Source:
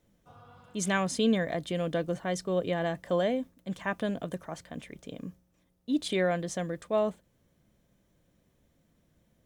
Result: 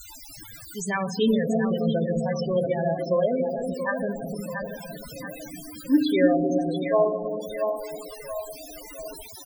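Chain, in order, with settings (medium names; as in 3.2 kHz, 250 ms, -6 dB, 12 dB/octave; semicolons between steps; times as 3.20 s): expander on every frequency bin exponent 1.5; 1.87–2.54 s: band-stop 4.1 kHz, Q 6; 3.24–3.75 s: high-pass 46 Hz 24 dB/octave; comb 7.4 ms, depth 34%; 4.43–4.95 s: compressor with a negative ratio -53 dBFS, ratio -0.5; word length cut 6-bit, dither triangular; FDN reverb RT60 2.1 s, low-frequency decay 1.45×, high-frequency decay 0.35×, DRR 5.5 dB; added noise brown -58 dBFS; two-band feedback delay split 530 Hz, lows 302 ms, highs 682 ms, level -5.5 dB; loudest bins only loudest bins 16; trim +5.5 dB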